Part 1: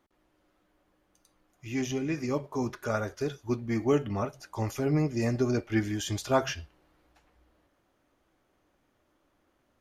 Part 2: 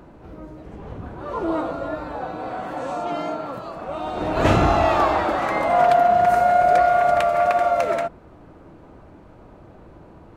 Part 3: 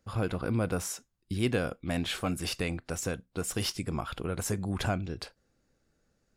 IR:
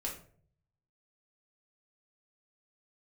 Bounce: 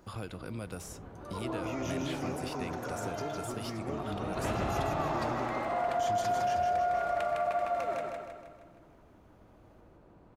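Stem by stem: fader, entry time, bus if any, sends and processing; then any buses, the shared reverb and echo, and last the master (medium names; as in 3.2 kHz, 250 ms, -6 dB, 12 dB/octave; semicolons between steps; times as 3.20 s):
-0.5 dB, 0.00 s, muted 5.44–5.99 s, no send, echo send -4.5 dB, compression, threshold -32 dBFS, peak gain reduction 13 dB; peak limiter -31.5 dBFS, peak gain reduction 9.5 dB
-14.5 dB, 0.00 s, no send, echo send -3.5 dB, none
-10.0 dB, 0.00 s, no send, no echo send, three bands compressed up and down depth 70%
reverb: none
echo: feedback delay 157 ms, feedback 52%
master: peak limiter -22.5 dBFS, peak gain reduction 5.5 dB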